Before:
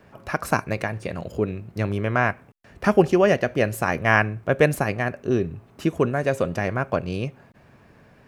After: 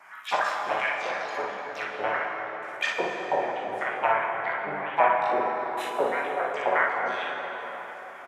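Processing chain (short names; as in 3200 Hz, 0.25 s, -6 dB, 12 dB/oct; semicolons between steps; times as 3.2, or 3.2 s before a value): treble ducked by the level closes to 490 Hz, closed at -17 dBFS; limiter -15.5 dBFS, peak gain reduction 9.5 dB; envelope phaser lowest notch 470 Hz, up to 3500 Hz, full sweep at -24 dBFS; LFO high-pass saw up 3 Hz 630–3700 Hz; on a send: early reflections 21 ms -11 dB, 39 ms -8 dB, 55 ms -3.5 dB; on the sum: harmoniser +5 st 0 dB; plate-style reverb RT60 4.9 s, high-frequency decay 0.5×, DRR 0.5 dB; gain +1 dB; SBC 128 kbps 32000 Hz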